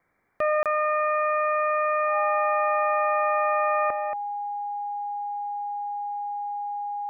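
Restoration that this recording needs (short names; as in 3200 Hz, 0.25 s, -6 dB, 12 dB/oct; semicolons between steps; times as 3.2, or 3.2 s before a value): notch 820 Hz, Q 30; interpolate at 0.63, 27 ms; expander -23 dBFS, range -21 dB; inverse comb 0.229 s -8.5 dB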